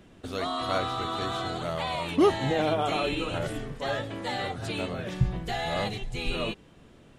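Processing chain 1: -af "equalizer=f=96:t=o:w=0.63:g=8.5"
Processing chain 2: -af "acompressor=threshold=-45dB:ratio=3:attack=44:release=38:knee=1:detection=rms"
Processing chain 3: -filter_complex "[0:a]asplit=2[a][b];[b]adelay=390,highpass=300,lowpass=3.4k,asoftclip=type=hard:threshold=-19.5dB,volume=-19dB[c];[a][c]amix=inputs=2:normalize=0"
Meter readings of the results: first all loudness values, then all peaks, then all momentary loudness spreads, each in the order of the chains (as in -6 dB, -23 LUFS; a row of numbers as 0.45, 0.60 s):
-28.5, -40.5, -29.5 LUFS; -8.0, -26.0, -10.5 dBFS; 9, 3, 9 LU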